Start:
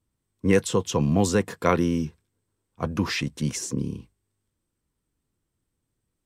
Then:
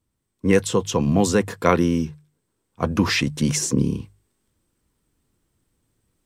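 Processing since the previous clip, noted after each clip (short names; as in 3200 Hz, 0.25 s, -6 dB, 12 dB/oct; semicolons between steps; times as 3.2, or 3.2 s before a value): notches 50/100/150 Hz; vocal rider 2 s; gain +5.5 dB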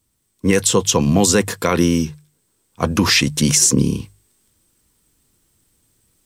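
high shelf 3100 Hz +11.5 dB; limiter -7.5 dBFS, peak gain reduction 8 dB; gain +4 dB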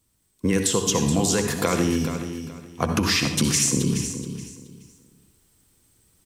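compressor, threshold -18 dBFS, peak gain reduction 8.5 dB; feedback echo 0.425 s, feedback 24%, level -10 dB; reverb RT60 0.60 s, pre-delay 58 ms, DRR 6 dB; gain -1 dB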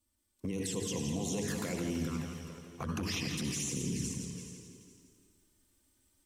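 envelope flanger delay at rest 3.4 ms, full sweep at -17 dBFS; limiter -20 dBFS, peak gain reduction 9.5 dB; warbling echo 0.168 s, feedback 51%, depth 62 cents, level -6.5 dB; gain -7.5 dB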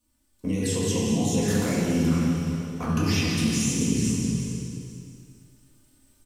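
feedback echo 0.224 s, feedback 44%, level -11 dB; shoebox room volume 290 m³, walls mixed, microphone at 1.9 m; gain +3.5 dB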